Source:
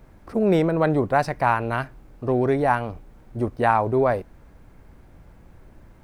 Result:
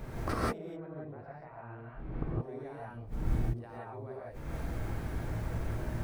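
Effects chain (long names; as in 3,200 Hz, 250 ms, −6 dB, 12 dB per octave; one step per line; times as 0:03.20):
0:02.79–0:03.45: low-shelf EQ 340 Hz +8 dB
brickwall limiter −14.5 dBFS, peak gain reduction 10 dB
gate with flip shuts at −30 dBFS, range −34 dB
0:00.58–0:02.25: high-frequency loss of the air 450 metres
reverb whose tail is shaped and stops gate 200 ms rising, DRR −6 dB
level +6.5 dB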